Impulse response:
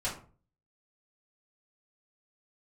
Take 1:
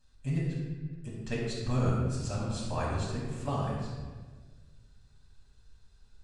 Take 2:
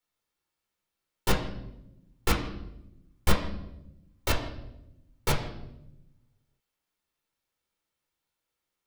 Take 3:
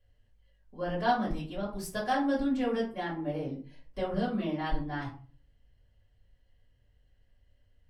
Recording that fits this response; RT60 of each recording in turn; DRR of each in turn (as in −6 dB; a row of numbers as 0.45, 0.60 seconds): 3; 1.5, 0.90, 0.40 seconds; −7.0, 0.0, −9.0 decibels